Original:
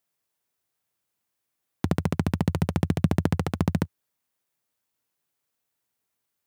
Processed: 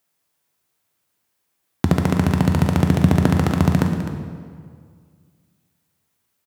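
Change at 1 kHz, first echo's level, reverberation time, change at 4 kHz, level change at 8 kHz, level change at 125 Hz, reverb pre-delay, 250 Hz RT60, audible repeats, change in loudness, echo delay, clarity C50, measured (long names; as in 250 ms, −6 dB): +8.5 dB, −11.5 dB, 2.0 s, +8.0 dB, +8.5 dB, +8.5 dB, 7 ms, 2.0 s, 1, +8.0 dB, 256 ms, 5.0 dB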